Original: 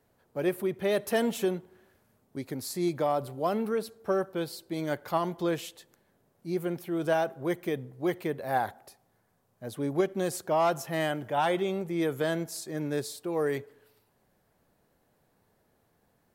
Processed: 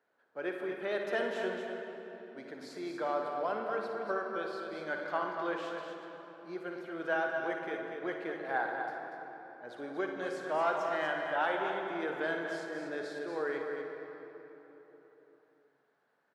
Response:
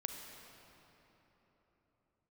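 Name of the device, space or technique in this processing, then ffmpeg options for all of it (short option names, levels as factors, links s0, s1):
station announcement: -filter_complex "[0:a]highpass=370,lowpass=3900,equalizer=f=1500:t=o:w=0.46:g=10,aecho=1:1:58.31|239.1:0.316|0.447[s0];[1:a]atrim=start_sample=2205[s1];[s0][s1]afir=irnorm=-1:irlink=0,volume=0.562"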